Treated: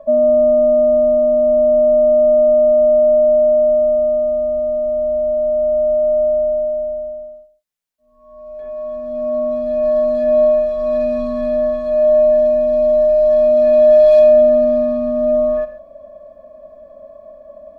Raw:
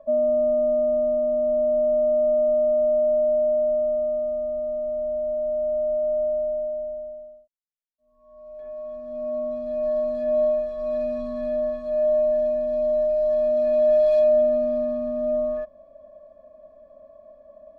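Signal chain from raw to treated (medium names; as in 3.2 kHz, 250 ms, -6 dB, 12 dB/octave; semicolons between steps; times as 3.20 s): gated-style reverb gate 170 ms flat, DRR 10 dB; trim +9 dB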